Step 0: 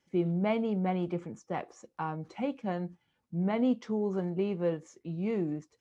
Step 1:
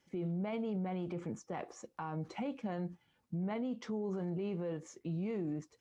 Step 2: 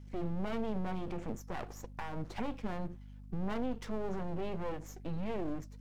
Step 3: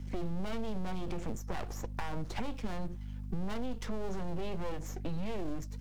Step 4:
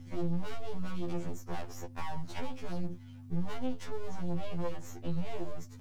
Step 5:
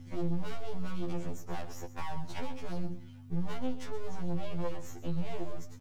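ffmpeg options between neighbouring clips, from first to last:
-af "acompressor=threshold=0.0224:ratio=2,alimiter=level_in=2.82:limit=0.0631:level=0:latency=1:release=24,volume=0.355,volume=1.26"
-af "aeval=exprs='max(val(0),0)':c=same,aeval=exprs='val(0)+0.002*(sin(2*PI*50*n/s)+sin(2*PI*2*50*n/s)/2+sin(2*PI*3*50*n/s)/3+sin(2*PI*4*50*n/s)/4+sin(2*PI*5*50*n/s)/5)':c=same,volume=1.88"
-filter_complex "[0:a]acrossover=split=100|3600[s0][s1][s2];[s0]acompressor=threshold=0.00708:ratio=4[s3];[s1]acompressor=threshold=0.00398:ratio=4[s4];[s2]acompressor=threshold=0.00112:ratio=4[s5];[s3][s4][s5]amix=inputs=3:normalize=0,volume=2.99"
-af "afftfilt=real='re*2*eq(mod(b,4),0)':imag='im*2*eq(mod(b,4),0)':win_size=2048:overlap=0.75,volume=1.12"
-af "aecho=1:1:126:0.2"

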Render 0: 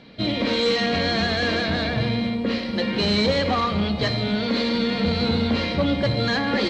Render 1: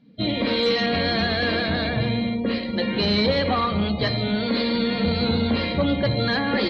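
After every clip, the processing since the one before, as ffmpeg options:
-af "afftdn=nr=20:nf=-37"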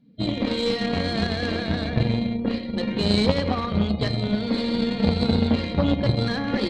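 -af "lowshelf=f=500:g=10,aeval=exprs='0.794*(cos(1*acos(clip(val(0)/0.794,-1,1)))-cos(1*PI/2))+0.178*(cos(3*acos(clip(val(0)/0.794,-1,1)))-cos(3*PI/2))+0.00447*(cos(8*acos(clip(val(0)/0.794,-1,1)))-cos(8*PI/2))':c=same,highshelf=f=4500:g=7,volume=0.891"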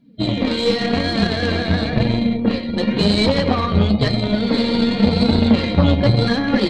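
-af "dynaudnorm=f=660:g=5:m=3.76,flanger=delay=3:depth=9.2:regen=42:speed=0.93:shape=sinusoidal,alimiter=level_in=3.35:limit=0.891:release=50:level=0:latency=1,volume=0.891"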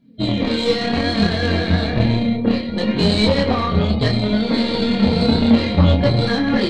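-af "flanger=delay=22.5:depth=4.6:speed=0.66,volume=1.41"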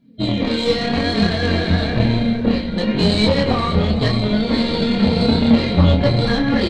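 -filter_complex "[0:a]asplit=5[s0][s1][s2][s3][s4];[s1]adelay=469,afreqshift=-49,volume=0.237[s5];[s2]adelay=938,afreqshift=-98,volume=0.105[s6];[s3]adelay=1407,afreqshift=-147,volume=0.0457[s7];[s4]adelay=1876,afreqshift=-196,volume=0.0202[s8];[s0][s5][s6][s7][s8]amix=inputs=5:normalize=0"

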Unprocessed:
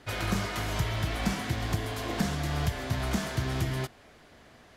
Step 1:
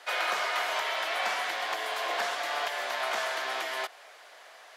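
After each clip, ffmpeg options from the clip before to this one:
-filter_complex "[0:a]highpass=f=590:w=0.5412,highpass=f=590:w=1.3066,acrossover=split=4100[s0][s1];[s1]acompressor=threshold=0.00282:ratio=4:attack=1:release=60[s2];[s0][s2]amix=inputs=2:normalize=0,volume=2.11"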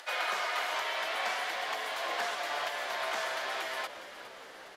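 -filter_complex "[0:a]flanger=delay=3.4:depth=6.2:regen=-55:speed=0.5:shape=sinusoidal,asplit=8[s0][s1][s2][s3][s4][s5][s6][s7];[s1]adelay=410,afreqshift=-63,volume=0.211[s8];[s2]adelay=820,afreqshift=-126,volume=0.135[s9];[s3]adelay=1230,afreqshift=-189,volume=0.0861[s10];[s4]adelay=1640,afreqshift=-252,volume=0.0556[s11];[s5]adelay=2050,afreqshift=-315,volume=0.0355[s12];[s6]adelay=2460,afreqshift=-378,volume=0.0226[s13];[s7]adelay=2870,afreqshift=-441,volume=0.0145[s14];[s0][s8][s9][s10][s11][s12][s13][s14]amix=inputs=8:normalize=0,acompressor=mode=upward:threshold=0.00447:ratio=2.5,volume=1.12"

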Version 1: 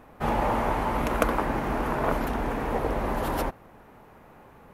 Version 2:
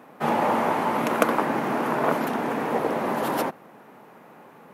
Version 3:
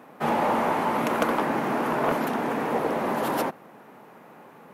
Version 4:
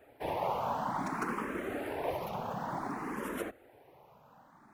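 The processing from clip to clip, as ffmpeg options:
-af "highpass=f=160:w=0.5412,highpass=f=160:w=1.3066,volume=1.5"
-af "asoftclip=type=tanh:threshold=0.2"
-filter_complex "[0:a]afftfilt=real='hypot(re,im)*cos(2*PI*random(0))':imag='hypot(re,im)*sin(2*PI*random(1))':win_size=512:overlap=0.75,acrusher=bits=8:mode=log:mix=0:aa=0.000001,asplit=2[s0][s1];[s1]afreqshift=0.56[s2];[s0][s2]amix=inputs=2:normalize=1,volume=0.794"

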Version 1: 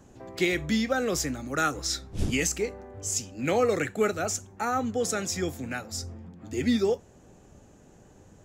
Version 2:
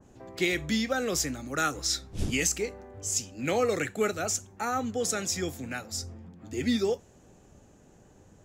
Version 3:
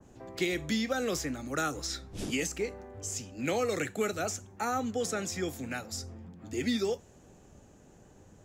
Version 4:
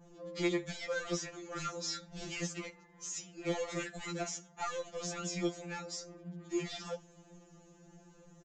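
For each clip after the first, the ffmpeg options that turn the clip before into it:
-af "adynamicequalizer=threshold=0.0126:dfrequency=2100:dqfactor=0.7:tfrequency=2100:tqfactor=0.7:attack=5:release=100:ratio=0.375:range=2:mode=boostabove:tftype=highshelf,volume=0.75"
-filter_complex "[0:a]acrossover=split=180|1200|2700[s0][s1][s2][s3];[s0]acompressor=threshold=0.00708:ratio=4[s4];[s1]acompressor=threshold=0.0398:ratio=4[s5];[s2]acompressor=threshold=0.01:ratio=4[s6];[s3]acompressor=threshold=0.0141:ratio=4[s7];[s4][s5][s6][s7]amix=inputs=4:normalize=0"
-af "aresample=16000,asoftclip=type=tanh:threshold=0.0299,aresample=44100,afftfilt=real='re*2.83*eq(mod(b,8),0)':imag='im*2.83*eq(mod(b,8),0)':win_size=2048:overlap=0.75,volume=1.12"

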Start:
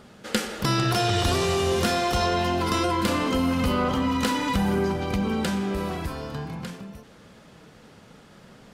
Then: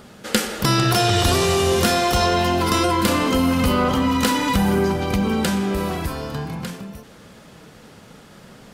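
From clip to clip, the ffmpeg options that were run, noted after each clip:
-af "highshelf=f=9700:g=8.5,volume=1.78"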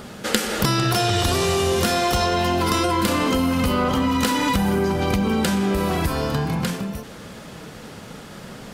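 -af "acompressor=threshold=0.0631:ratio=6,volume=2.11"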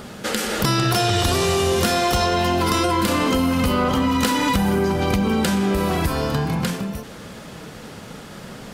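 -af "alimiter=level_in=2.37:limit=0.891:release=50:level=0:latency=1,volume=0.473"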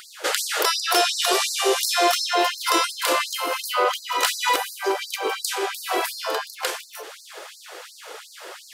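-af "afftfilt=real='re*gte(b*sr/1024,300*pow(4100/300,0.5+0.5*sin(2*PI*2.8*pts/sr)))':imag='im*gte(b*sr/1024,300*pow(4100/300,0.5+0.5*sin(2*PI*2.8*pts/sr)))':win_size=1024:overlap=0.75,volume=1.33"

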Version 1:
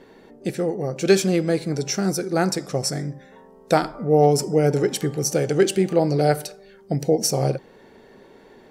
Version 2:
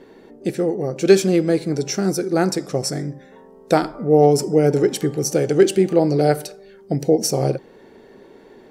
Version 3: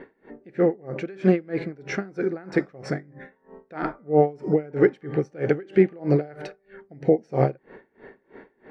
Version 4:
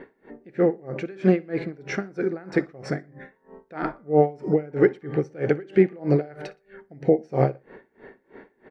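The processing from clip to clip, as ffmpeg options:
-af "equalizer=f=340:w=1.3:g=5"
-af "alimiter=limit=0.355:level=0:latency=1:release=152,lowpass=f=1900:t=q:w=2.4,aeval=exprs='val(0)*pow(10,-28*(0.5-0.5*cos(2*PI*3.1*n/s))/20)':c=same,volume=1.33"
-af "aecho=1:1:60|120:0.0708|0.0227"

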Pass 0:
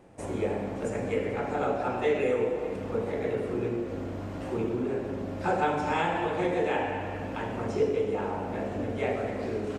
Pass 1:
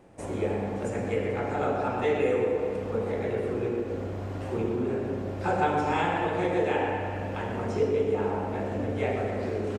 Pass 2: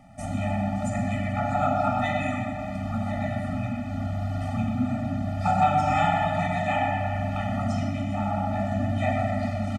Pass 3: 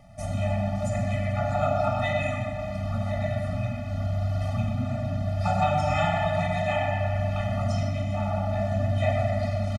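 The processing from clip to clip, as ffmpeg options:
-filter_complex "[0:a]asplit=2[s0][s1];[s1]adelay=123,lowpass=f=2000:p=1,volume=0.501,asplit=2[s2][s3];[s3]adelay=123,lowpass=f=2000:p=1,volume=0.54,asplit=2[s4][s5];[s5]adelay=123,lowpass=f=2000:p=1,volume=0.54,asplit=2[s6][s7];[s7]adelay=123,lowpass=f=2000:p=1,volume=0.54,asplit=2[s8][s9];[s9]adelay=123,lowpass=f=2000:p=1,volume=0.54,asplit=2[s10][s11];[s11]adelay=123,lowpass=f=2000:p=1,volume=0.54,asplit=2[s12][s13];[s13]adelay=123,lowpass=f=2000:p=1,volume=0.54[s14];[s0][s2][s4][s6][s8][s10][s12][s14]amix=inputs=8:normalize=0"
-af "afftfilt=real='re*eq(mod(floor(b*sr/1024/290),2),0)':imag='im*eq(mod(floor(b*sr/1024/290),2),0)':win_size=1024:overlap=0.75,volume=2.24"
-af "aecho=1:1:1.9:0.64"

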